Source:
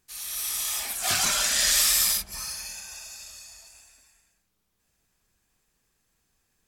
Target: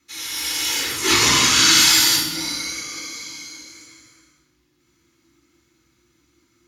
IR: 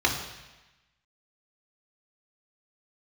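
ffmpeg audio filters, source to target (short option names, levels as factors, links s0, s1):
-filter_complex "[0:a]afreqshift=-360,equalizer=f=740:t=o:w=0.49:g=-10.5[s0];[1:a]atrim=start_sample=2205[s1];[s0][s1]afir=irnorm=-1:irlink=0,volume=0.75"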